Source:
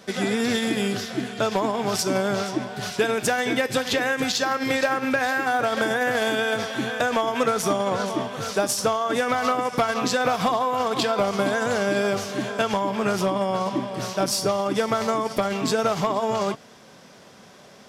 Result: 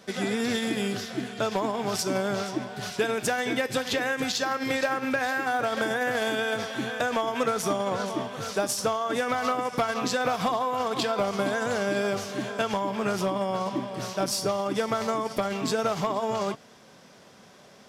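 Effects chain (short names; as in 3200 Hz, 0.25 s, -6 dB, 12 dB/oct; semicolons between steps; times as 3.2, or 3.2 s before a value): short-mantissa float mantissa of 6-bit; gain -4 dB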